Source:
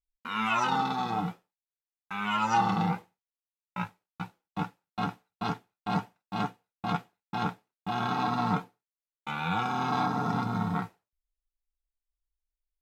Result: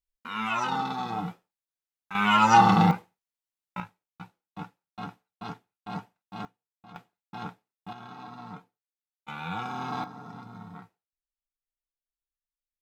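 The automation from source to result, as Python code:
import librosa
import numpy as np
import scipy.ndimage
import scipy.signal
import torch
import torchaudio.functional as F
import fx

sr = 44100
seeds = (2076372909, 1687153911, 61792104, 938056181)

y = fx.gain(x, sr, db=fx.steps((0.0, -1.5), (2.15, 8.0), (2.91, 0.5), (3.8, -7.0), (6.45, -19.5), (6.96, -7.5), (7.93, -15.0), (9.28, -4.5), (10.04, -14.5)))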